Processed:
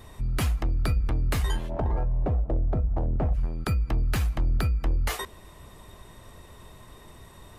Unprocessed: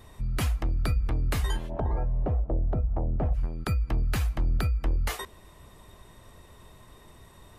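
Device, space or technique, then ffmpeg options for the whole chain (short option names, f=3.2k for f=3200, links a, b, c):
parallel distortion: -filter_complex "[0:a]asplit=2[a][b];[b]asoftclip=type=hard:threshold=-32.5dB,volume=-6dB[c];[a][c]amix=inputs=2:normalize=0"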